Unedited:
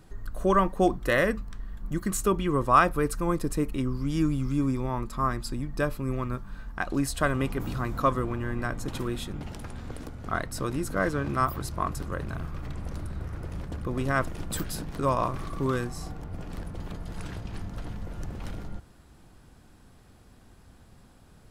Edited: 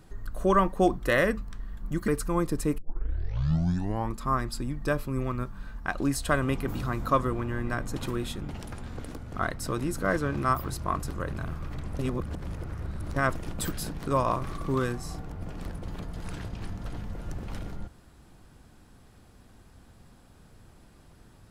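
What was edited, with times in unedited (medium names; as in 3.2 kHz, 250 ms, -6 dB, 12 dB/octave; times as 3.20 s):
2.08–3.00 s: delete
3.70 s: tape start 1.38 s
12.91–14.08 s: reverse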